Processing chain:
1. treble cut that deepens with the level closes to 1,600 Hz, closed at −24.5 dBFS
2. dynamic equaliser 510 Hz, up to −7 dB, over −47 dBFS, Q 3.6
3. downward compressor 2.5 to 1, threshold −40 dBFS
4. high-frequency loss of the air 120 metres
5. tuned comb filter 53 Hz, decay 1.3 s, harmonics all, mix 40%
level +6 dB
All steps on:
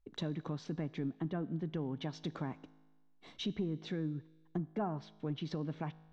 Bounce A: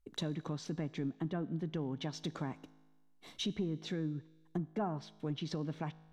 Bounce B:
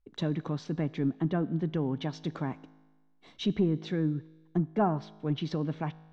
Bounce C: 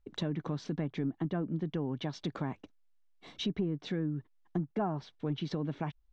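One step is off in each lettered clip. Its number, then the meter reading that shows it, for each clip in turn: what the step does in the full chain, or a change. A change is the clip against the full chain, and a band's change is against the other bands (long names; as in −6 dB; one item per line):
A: 4, 4 kHz band +3.0 dB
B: 3, average gain reduction 6.5 dB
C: 5, change in integrated loudness +4.0 LU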